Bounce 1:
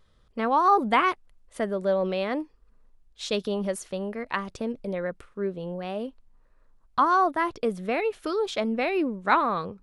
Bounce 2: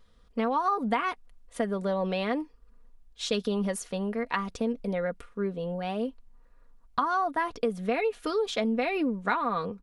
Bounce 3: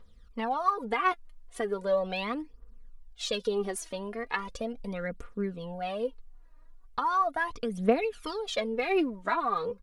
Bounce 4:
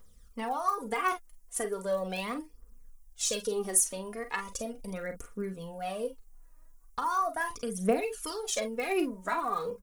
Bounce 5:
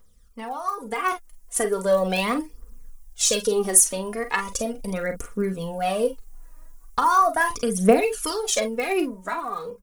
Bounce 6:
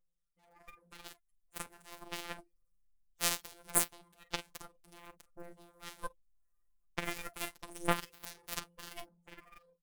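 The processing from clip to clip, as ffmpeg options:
-af "aecho=1:1:4.2:0.54,acompressor=threshold=0.0708:ratio=10"
-af "equalizer=f=180:t=o:w=0.77:g=-2,aphaser=in_gain=1:out_gain=1:delay=3.3:decay=0.68:speed=0.38:type=triangular,volume=0.668"
-filter_complex "[0:a]aexciter=amount=5.1:drive=7.7:freq=5700,asplit=2[s0][s1];[s1]aecho=0:1:37|48:0.266|0.282[s2];[s0][s2]amix=inputs=2:normalize=0,volume=0.708"
-af "dynaudnorm=f=410:g=7:m=4.22"
-filter_complex "[0:a]acrossover=split=1100[s0][s1];[s0]aeval=exprs='val(0)*(1-0.5/2+0.5/2*cos(2*PI*1.3*n/s))':c=same[s2];[s1]aeval=exprs='val(0)*(1-0.5/2-0.5/2*cos(2*PI*1.3*n/s))':c=same[s3];[s2][s3]amix=inputs=2:normalize=0,afftfilt=real='hypot(re,im)*cos(PI*b)':imag='0':win_size=1024:overlap=0.75,aeval=exprs='0.75*(cos(1*acos(clip(val(0)/0.75,-1,1)))-cos(1*PI/2))+0.299*(cos(2*acos(clip(val(0)/0.75,-1,1)))-cos(2*PI/2))+0.0531*(cos(4*acos(clip(val(0)/0.75,-1,1)))-cos(4*PI/2))+0.075*(cos(6*acos(clip(val(0)/0.75,-1,1)))-cos(6*PI/2))+0.119*(cos(7*acos(clip(val(0)/0.75,-1,1)))-cos(7*PI/2))':c=same,volume=0.596"

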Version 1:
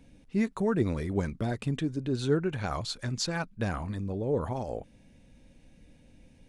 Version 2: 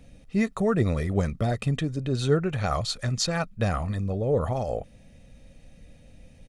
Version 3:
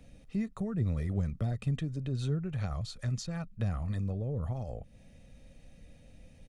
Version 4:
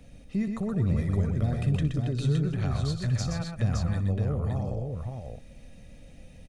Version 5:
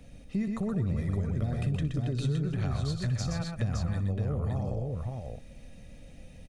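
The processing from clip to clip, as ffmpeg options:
-af "aecho=1:1:1.6:0.46,volume=1.68"
-filter_complex "[0:a]acrossover=split=210[s0][s1];[s1]acompressor=threshold=0.0141:ratio=10[s2];[s0][s2]amix=inputs=2:normalize=0,volume=0.631"
-af "aecho=1:1:63|123|251|566:0.178|0.531|0.141|0.596,volume=1.58"
-af "acompressor=threshold=0.0501:ratio=4"

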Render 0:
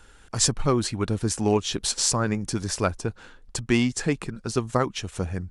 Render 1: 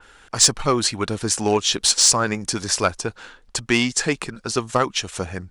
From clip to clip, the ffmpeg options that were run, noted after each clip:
-filter_complex "[0:a]asplit=2[s0][s1];[s1]highpass=f=720:p=1,volume=3.55,asoftclip=type=tanh:threshold=0.631[s2];[s0][s2]amix=inputs=2:normalize=0,lowpass=f=4100:p=1,volume=0.501,adynamicequalizer=threshold=0.0141:dfrequency=3500:dqfactor=0.7:tfrequency=3500:tqfactor=0.7:attack=5:release=100:ratio=0.375:range=3.5:mode=boostabove:tftype=highshelf,volume=1.19"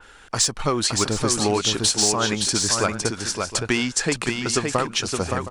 -af "acompressor=threshold=0.112:ratio=6,aecho=1:1:568|717|743:0.596|0.211|0.1,volume=1.19"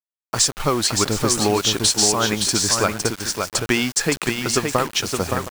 -af "aeval=exprs='sgn(val(0))*max(abs(val(0))-0.0112,0)':c=same,acrusher=bits=5:mix=0:aa=0.000001,volume=1.41"

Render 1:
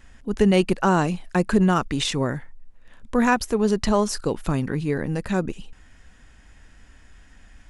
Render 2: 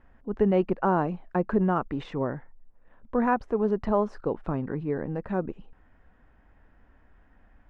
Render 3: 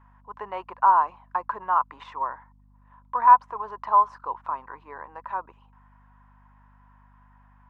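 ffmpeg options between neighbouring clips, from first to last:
-af "lowpass=1000,lowshelf=f=310:g=-9"
-af "highpass=f=1000:t=q:w=10,aeval=exprs='val(0)+0.00251*(sin(2*PI*50*n/s)+sin(2*PI*2*50*n/s)/2+sin(2*PI*3*50*n/s)/3+sin(2*PI*4*50*n/s)/4+sin(2*PI*5*50*n/s)/5)':c=same,volume=0.668"

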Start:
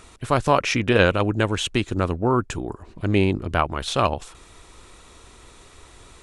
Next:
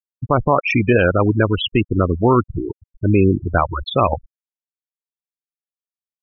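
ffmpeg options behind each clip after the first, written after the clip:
-af "afftfilt=real='re*gte(hypot(re,im),0.158)':imag='im*gte(hypot(re,im),0.158)':win_size=1024:overlap=0.75,alimiter=level_in=3.16:limit=0.891:release=50:level=0:latency=1,volume=0.708"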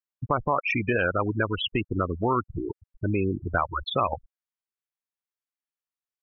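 -af "equalizer=f=1400:t=o:w=2.2:g=8.5,acompressor=threshold=0.1:ratio=2,volume=0.473"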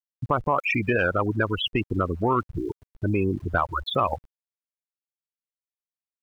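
-af "acontrast=81,aeval=exprs='val(0)*gte(abs(val(0)),0.00631)':c=same,volume=0.562"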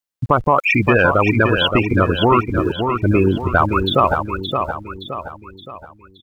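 -af "aecho=1:1:570|1140|1710|2280|2850:0.501|0.221|0.097|0.0427|0.0188,volume=2.66"

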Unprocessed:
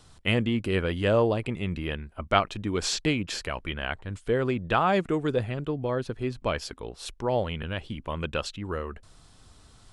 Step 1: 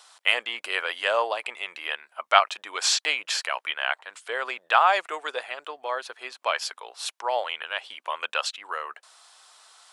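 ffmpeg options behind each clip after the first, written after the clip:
-af "highpass=f=720:w=0.5412,highpass=f=720:w=1.3066,volume=2.11"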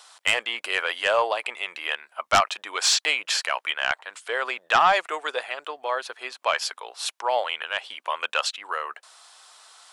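-af "aeval=exprs='0.841*sin(PI/2*2.51*val(0)/0.841)':c=same,volume=0.355"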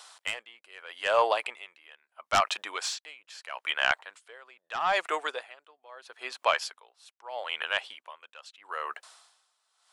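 -af "aeval=exprs='val(0)*pow(10,-25*(0.5-0.5*cos(2*PI*0.78*n/s))/20)':c=same"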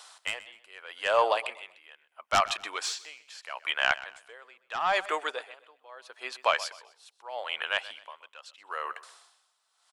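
-af "aecho=1:1:127|254|381:0.133|0.0413|0.0128"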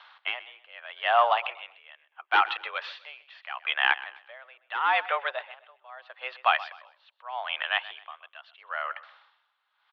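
-af "highpass=f=180:t=q:w=0.5412,highpass=f=180:t=q:w=1.307,lowpass=f=3300:t=q:w=0.5176,lowpass=f=3300:t=q:w=0.7071,lowpass=f=3300:t=q:w=1.932,afreqshift=130,volume=1.33"

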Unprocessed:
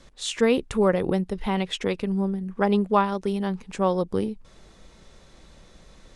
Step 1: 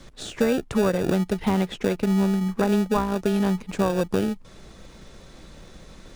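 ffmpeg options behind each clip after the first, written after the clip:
-filter_complex "[0:a]acrossover=split=82|1200[s0][s1][s2];[s0]acompressor=threshold=0.00251:ratio=4[s3];[s1]acompressor=threshold=0.0501:ratio=4[s4];[s2]acompressor=threshold=0.00708:ratio=4[s5];[s3][s4][s5]amix=inputs=3:normalize=0,asplit=2[s6][s7];[s7]acrusher=samples=42:mix=1:aa=0.000001,volume=0.501[s8];[s6][s8]amix=inputs=2:normalize=0,volume=1.68"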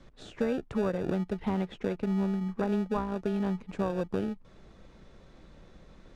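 -af "aemphasis=mode=reproduction:type=75fm,volume=0.376"

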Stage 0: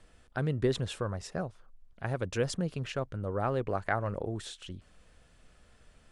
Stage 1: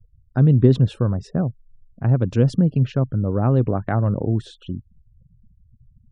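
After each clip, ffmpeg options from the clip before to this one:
-af "afftfilt=real='re*gte(hypot(re,im),0.00398)':imag='im*gte(hypot(re,im),0.00398)':win_size=1024:overlap=0.75,equalizer=f=125:t=o:w=1:g=12,equalizer=f=250:t=o:w=1:g=10,equalizer=f=2000:t=o:w=1:g=-7,equalizer=f=8000:t=o:w=1:g=-11,volume=1.78"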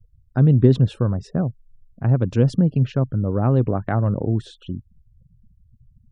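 -af "aeval=exprs='0.794*(cos(1*acos(clip(val(0)/0.794,-1,1)))-cos(1*PI/2))+0.00501*(cos(7*acos(clip(val(0)/0.794,-1,1)))-cos(7*PI/2))':c=same"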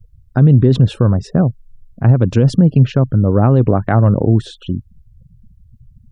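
-af "alimiter=level_in=3.16:limit=0.891:release=50:level=0:latency=1,volume=0.891"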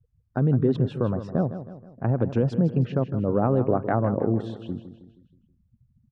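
-filter_complex "[0:a]bandpass=f=590:t=q:w=0.51:csg=0,asplit=2[s0][s1];[s1]aecho=0:1:159|318|477|636|795:0.266|0.125|0.0588|0.0276|0.013[s2];[s0][s2]amix=inputs=2:normalize=0,volume=0.473"

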